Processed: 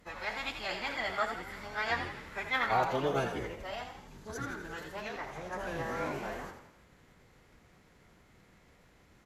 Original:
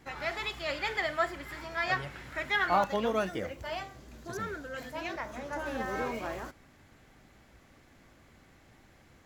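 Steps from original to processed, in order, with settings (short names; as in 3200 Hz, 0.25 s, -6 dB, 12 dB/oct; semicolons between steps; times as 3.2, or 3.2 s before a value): formant-preserving pitch shift -8 st; frequency-shifting echo 84 ms, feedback 50%, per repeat +47 Hz, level -8 dB; gain -2 dB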